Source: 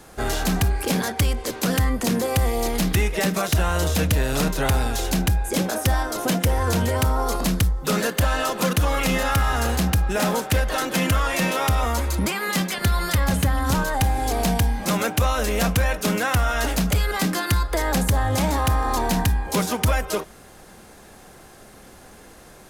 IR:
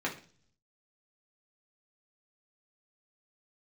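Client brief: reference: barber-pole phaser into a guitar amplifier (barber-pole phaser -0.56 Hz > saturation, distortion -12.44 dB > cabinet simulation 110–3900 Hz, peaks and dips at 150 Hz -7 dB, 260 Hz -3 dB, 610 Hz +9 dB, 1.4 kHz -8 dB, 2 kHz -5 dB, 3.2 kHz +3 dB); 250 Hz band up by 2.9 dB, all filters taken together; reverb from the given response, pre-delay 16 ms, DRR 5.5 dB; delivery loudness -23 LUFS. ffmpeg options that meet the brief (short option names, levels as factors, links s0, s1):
-filter_complex "[0:a]equalizer=f=250:t=o:g=7.5,asplit=2[s0][s1];[1:a]atrim=start_sample=2205,adelay=16[s2];[s1][s2]afir=irnorm=-1:irlink=0,volume=0.251[s3];[s0][s3]amix=inputs=2:normalize=0,asplit=2[s4][s5];[s5]afreqshift=-0.56[s6];[s4][s6]amix=inputs=2:normalize=1,asoftclip=threshold=0.112,highpass=110,equalizer=f=150:t=q:w=4:g=-7,equalizer=f=260:t=q:w=4:g=-3,equalizer=f=610:t=q:w=4:g=9,equalizer=f=1400:t=q:w=4:g=-8,equalizer=f=2000:t=q:w=4:g=-5,equalizer=f=3200:t=q:w=4:g=3,lowpass=f=3900:w=0.5412,lowpass=f=3900:w=1.3066,volume=1.58"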